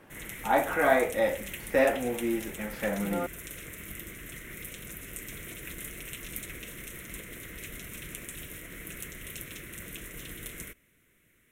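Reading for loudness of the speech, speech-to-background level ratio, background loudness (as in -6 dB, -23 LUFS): -28.0 LUFS, 12.5 dB, -40.5 LUFS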